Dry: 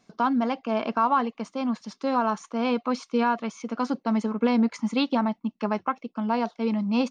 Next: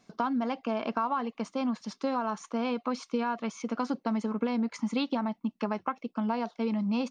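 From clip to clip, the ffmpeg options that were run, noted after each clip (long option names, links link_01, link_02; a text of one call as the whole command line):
ffmpeg -i in.wav -af "acompressor=threshold=-26dB:ratio=6" out.wav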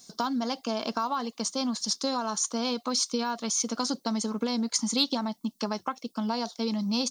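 ffmpeg -i in.wav -af "aexciter=amount=5.2:drive=9.2:freq=3700" out.wav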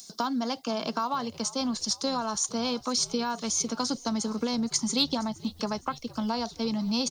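ffmpeg -i in.wav -filter_complex "[0:a]acrossover=split=290|880|2500[link_01][link_02][link_03][link_04];[link_04]acompressor=mode=upward:threshold=-42dB:ratio=2.5[link_05];[link_01][link_02][link_03][link_05]amix=inputs=4:normalize=0,asplit=5[link_06][link_07][link_08][link_09][link_10];[link_07]adelay=466,afreqshift=-71,volume=-19.5dB[link_11];[link_08]adelay=932,afreqshift=-142,volume=-25.3dB[link_12];[link_09]adelay=1398,afreqshift=-213,volume=-31.2dB[link_13];[link_10]adelay=1864,afreqshift=-284,volume=-37dB[link_14];[link_06][link_11][link_12][link_13][link_14]amix=inputs=5:normalize=0" out.wav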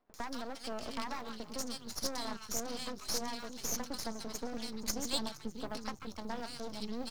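ffmpeg -i in.wav -filter_complex "[0:a]acrossover=split=240|1400[link_01][link_02][link_03];[link_03]adelay=140[link_04];[link_01]adelay=620[link_05];[link_05][link_02][link_04]amix=inputs=3:normalize=0,aeval=exprs='max(val(0),0)':channel_layout=same,volume=-4.5dB" out.wav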